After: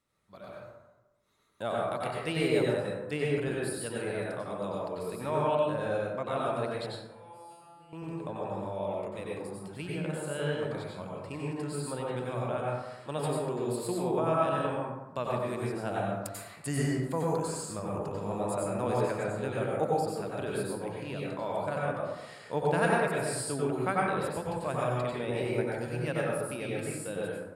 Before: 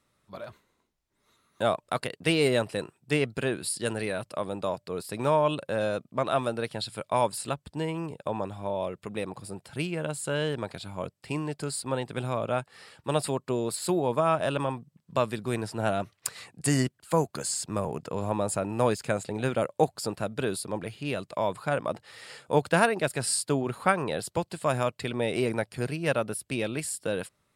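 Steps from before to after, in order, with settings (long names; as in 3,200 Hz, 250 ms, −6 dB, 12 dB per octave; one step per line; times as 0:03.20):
dynamic equaliser 6,100 Hz, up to −5 dB, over −49 dBFS, Q 1.1
0:06.86–0:07.93: tuned comb filter 170 Hz, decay 1 s, harmonics all, mix 100%
dense smooth reverb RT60 1.1 s, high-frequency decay 0.4×, pre-delay 80 ms, DRR −4.5 dB
level −9 dB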